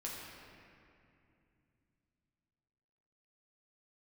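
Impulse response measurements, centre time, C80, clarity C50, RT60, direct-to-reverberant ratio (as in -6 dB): 132 ms, 0.5 dB, -0.5 dB, 2.6 s, -5.0 dB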